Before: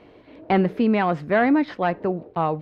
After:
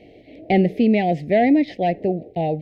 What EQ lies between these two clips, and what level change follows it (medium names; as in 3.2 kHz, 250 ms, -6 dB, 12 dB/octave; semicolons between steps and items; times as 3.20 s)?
Chebyshev band-stop 730–2000 Hz, order 3; +3.5 dB